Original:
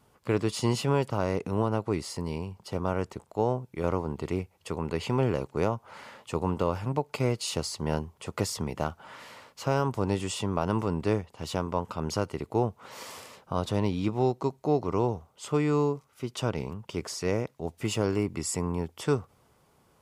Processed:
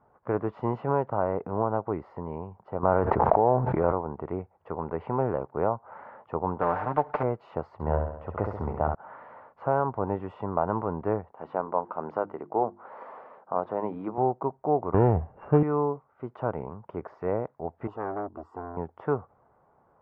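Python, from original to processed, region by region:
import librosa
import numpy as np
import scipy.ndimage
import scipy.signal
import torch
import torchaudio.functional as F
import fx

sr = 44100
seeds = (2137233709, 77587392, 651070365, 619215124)

y = fx.chain(x, sr, fx.law_mismatch(coded='mu'),
    fx.env_flatten(amount_pct=100), at=(2.83, 3.92))
y = fx.chain(y, sr, fx.cvsd(bps=64000),
    fx.comb(ms=6.7, depth=0.7),
    fx.spectral_comp(ratio=2.0), at=(6.61, 7.23))
y = fx.chain(y, sr, fx.peak_eq(hz=80.0, db=12.0, octaves=0.51),
    fx.room_flutter(wall_m=11.4, rt60_s=0.76), at=(7.73, 8.95))
y = fx.chain(y, sr, fx.bandpass_edges(low_hz=210.0, high_hz=6600.0),
    fx.hum_notches(base_hz=50, count=7), at=(11.32, 14.18))
y = fx.chain(y, sr, fx.sample_sort(block=16),
    fx.tilt_eq(slope=-4.0),
    fx.transient(attack_db=2, sustain_db=8), at=(14.94, 15.63))
y = fx.chain(y, sr, fx.fixed_phaser(hz=590.0, stages=6),
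    fx.transformer_sat(knee_hz=1100.0), at=(17.87, 18.77))
y = scipy.signal.sosfilt(scipy.signal.cheby1(3, 1.0, 1600.0, 'lowpass', fs=sr, output='sos'), y)
y = fx.peak_eq(y, sr, hz=750.0, db=12.0, octaves=1.4)
y = F.gain(torch.from_numpy(y), -5.0).numpy()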